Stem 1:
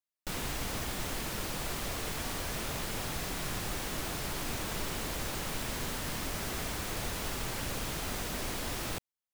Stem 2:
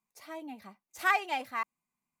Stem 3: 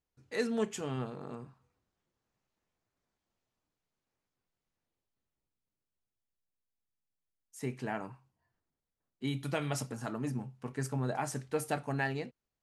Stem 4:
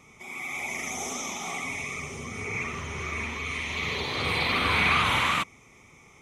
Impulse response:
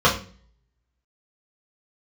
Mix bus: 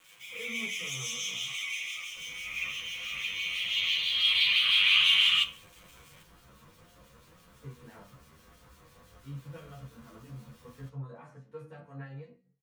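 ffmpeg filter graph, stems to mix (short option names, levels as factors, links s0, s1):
-filter_complex "[0:a]asoftclip=type=tanh:threshold=0.0316,adelay=1900,volume=0.106,asplit=2[s0][s1];[s1]volume=0.126[s2];[2:a]acrossover=split=3100[s3][s4];[s4]acompressor=threshold=0.00251:ratio=4:attack=1:release=60[s5];[s3][s5]amix=inputs=2:normalize=0,volume=0.106,asplit=2[s6][s7];[s7]volume=0.316[s8];[3:a]highpass=f=3000:t=q:w=7.8,acrusher=bits=7:mix=0:aa=0.000001,volume=0.891,asplit=2[s9][s10];[s10]volume=0.0631[s11];[4:a]atrim=start_sample=2205[s12];[s2][s8][s11]amix=inputs=3:normalize=0[s13];[s13][s12]afir=irnorm=-1:irlink=0[s14];[s0][s6][s9][s14]amix=inputs=4:normalize=0,acrossover=split=2300[s15][s16];[s15]aeval=exprs='val(0)*(1-0.5/2+0.5/2*cos(2*PI*6*n/s))':c=same[s17];[s16]aeval=exprs='val(0)*(1-0.5/2-0.5/2*cos(2*PI*6*n/s))':c=same[s18];[s17][s18]amix=inputs=2:normalize=0,asplit=2[s19][s20];[s20]adelay=10.3,afreqshift=1.8[s21];[s19][s21]amix=inputs=2:normalize=1"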